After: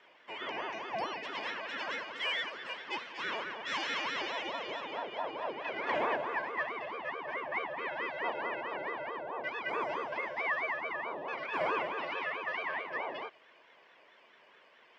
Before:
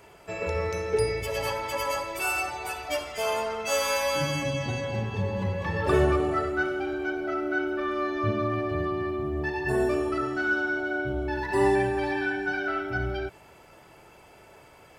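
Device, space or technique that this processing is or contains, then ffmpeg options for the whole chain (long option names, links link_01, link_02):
voice changer toy: -af "aeval=exprs='val(0)*sin(2*PI*530*n/s+530*0.6/4.6*sin(2*PI*4.6*n/s))':channel_layout=same,highpass=600,equalizer=frequency=780:width_type=q:width=4:gain=-7,equalizer=frequency=1300:width_type=q:width=4:gain=-10,equalizer=frequency=4000:width_type=q:width=4:gain=-7,lowpass=frequency=4200:width=0.5412,lowpass=frequency=4200:width=1.3066"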